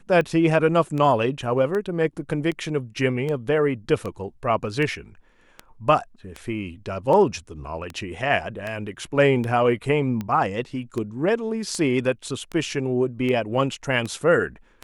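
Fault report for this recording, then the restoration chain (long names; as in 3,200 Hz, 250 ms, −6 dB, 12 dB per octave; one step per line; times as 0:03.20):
scratch tick 78 rpm −17 dBFS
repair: click removal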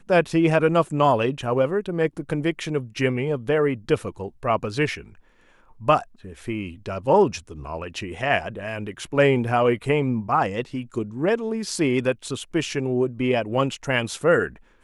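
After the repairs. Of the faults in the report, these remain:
none of them is left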